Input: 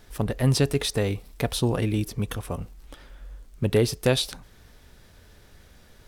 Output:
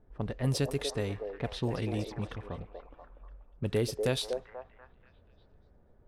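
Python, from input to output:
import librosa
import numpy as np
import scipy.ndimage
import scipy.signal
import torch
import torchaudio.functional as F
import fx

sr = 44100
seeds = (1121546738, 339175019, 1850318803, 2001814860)

y = fx.echo_stepped(x, sr, ms=242, hz=540.0, octaves=0.7, feedback_pct=70, wet_db=-2.0)
y = fx.env_lowpass(y, sr, base_hz=680.0, full_db=-18.5)
y = y * librosa.db_to_amplitude(-8.5)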